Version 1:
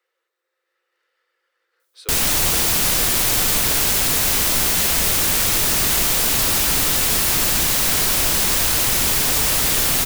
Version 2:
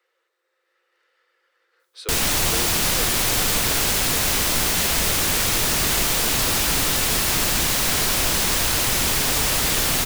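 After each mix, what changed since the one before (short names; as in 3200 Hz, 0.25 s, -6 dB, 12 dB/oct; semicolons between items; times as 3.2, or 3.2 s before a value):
speech +5.0 dB; master: add high shelf 9000 Hz -6 dB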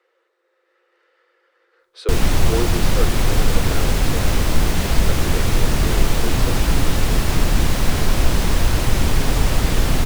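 speech +6.5 dB; master: add tilt -3 dB/oct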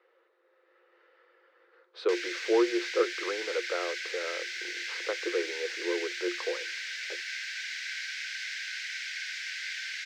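background: add rippled Chebyshev high-pass 1500 Hz, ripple 6 dB; master: add air absorption 180 m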